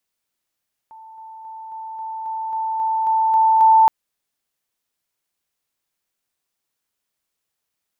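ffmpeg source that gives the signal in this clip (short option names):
-f lavfi -i "aevalsrc='pow(10,(-38.5+3*floor(t/0.27))/20)*sin(2*PI*887*t)':d=2.97:s=44100"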